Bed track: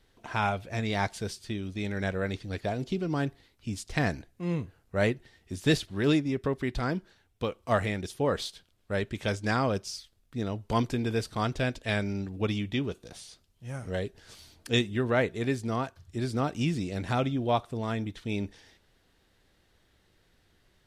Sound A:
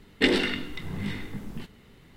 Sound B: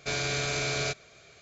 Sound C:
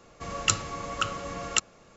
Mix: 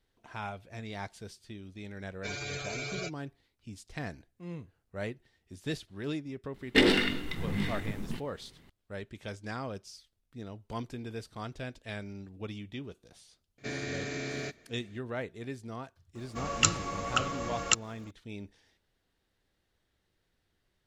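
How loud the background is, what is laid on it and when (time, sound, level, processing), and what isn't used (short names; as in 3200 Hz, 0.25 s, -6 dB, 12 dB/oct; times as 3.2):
bed track -11 dB
2.17 add B -3 dB + per-bin expansion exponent 3
6.54 add A -3.5 dB + sample leveller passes 1
13.58 add B -12.5 dB + small resonant body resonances 260/1800 Hz, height 18 dB, ringing for 25 ms
16.15 add C -0.5 dB + crackle 200/s -52 dBFS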